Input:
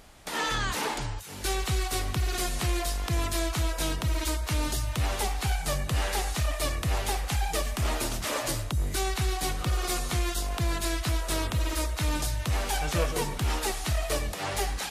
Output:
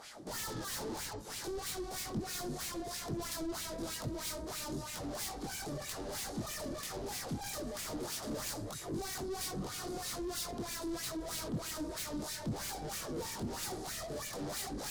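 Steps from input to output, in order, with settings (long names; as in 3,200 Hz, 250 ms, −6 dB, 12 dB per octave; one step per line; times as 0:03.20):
brickwall limiter −25 dBFS, peak gain reduction 10.5 dB
multi-voice chorus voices 6, 0.91 Hz, delay 23 ms, depth 5 ms
auto-filter band-pass sine 3.1 Hz 240–2,500 Hz
mid-hump overdrive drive 30 dB, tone 3,100 Hz, clips at −31 dBFS
drawn EQ curve 140 Hz 0 dB, 790 Hz −14 dB, 2,600 Hz −18 dB, 4,700 Hz 0 dB, 13,000 Hz +11 dB
level +7.5 dB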